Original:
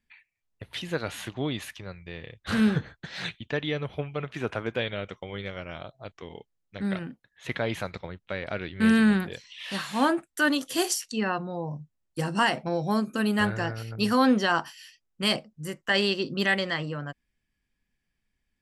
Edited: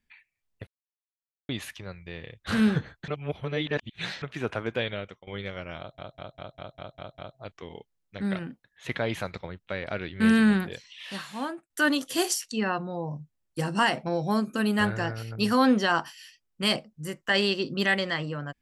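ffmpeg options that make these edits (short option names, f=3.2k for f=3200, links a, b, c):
-filter_complex "[0:a]asplit=14[a][b][c][d][e][f][g][h][i][j][k][l][m][n];[a]atrim=end=0.67,asetpts=PTS-STARTPTS,afade=t=out:st=0.666:d=0.004:c=hsin[o];[b]atrim=start=0.67:end=1.49,asetpts=PTS-STARTPTS,volume=0[p];[c]atrim=start=1.49:end=3.082,asetpts=PTS-STARTPTS,afade=t=in:d=0.004:c=hsin[q];[d]atrim=start=3.078:end=4.222,asetpts=PTS-STARTPTS,areverse[r];[e]atrim=start=4.218:end=5.27,asetpts=PTS-STARTPTS,afade=t=out:st=0.712:d=0.34:silence=0.112202[s];[f]atrim=start=5.27:end=5.982,asetpts=PTS-STARTPTS,afade=t=in:d=0.004:c=hsin:silence=0.112202[t];[g]atrim=start=5.778:end=5.982[u];[h]atrim=start=5.778:end=5.982[v];[i]atrim=start=5.778:end=5.982[w];[j]atrim=start=5.778:end=5.982[x];[k]atrim=start=5.778:end=5.982[y];[l]atrim=start=5.778:end=5.982[z];[m]atrim=start=5.778:end=10.3,asetpts=PTS-STARTPTS,afade=t=out:st=3.552:d=0.97:silence=0.1[aa];[n]atrim=start=10.3,asetpts=PTS-STARTPTS,afade=t=in:d=0.004:c=hsin:silence=0.1[ab];[o][p][q]concat=n=3:v=0:a=1[ac];[ac][r]acrossfade=d=0.004:c1=hsin:c2=hsin[ad];[s][t]concat=n=2:v=0:a=1[ae];[ad][ae]acrossfade=d=0.004:c1=hsin:c2=hsin[af];[af][u]acrossfade=d=0.004:c1=hsin:c2=hsin[ag];[ag][v]acrossfade=d=0.004:c1=hsin:c2=hsin[ah];[ah][w]acrossfade=d=0.004:c1=hsin:c2=hsin[ai];[ai][x]acrossfade=d=0.004:c1=hsin:c2=hsin[aj];[aj][y]acrossfade=d=0.004:c1=hsin:c2=hsin[ak];[ak][z]acrossfade=d=0.004:c1=hsin:c2=hsin[al];[aa][ab]concat=n=2:v=0:a=1[am];[al][am]acrossfade=d=0.004:c1=hsin:c2=hsin"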